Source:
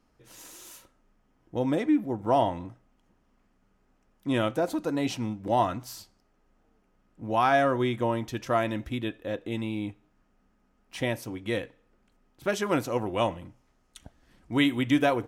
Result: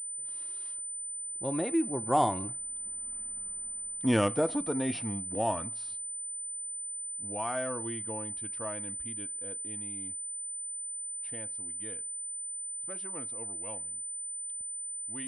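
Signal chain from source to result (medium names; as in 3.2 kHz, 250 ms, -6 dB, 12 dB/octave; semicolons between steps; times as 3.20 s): Doppler pass-by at 3.31 s, 27 m/s, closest 10 m; class-D stage that switches slowly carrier 9 kHz; trim +9 dB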